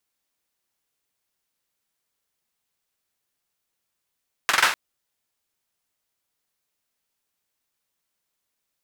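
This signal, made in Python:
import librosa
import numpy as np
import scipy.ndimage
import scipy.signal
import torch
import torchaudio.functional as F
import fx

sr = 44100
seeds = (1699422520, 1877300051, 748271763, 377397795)

y = fx.drum_clap(sr, seeds[0], length_s=0.25, bursts=4, spacing_ms=45, hz=1500.0, decay_s=0.44)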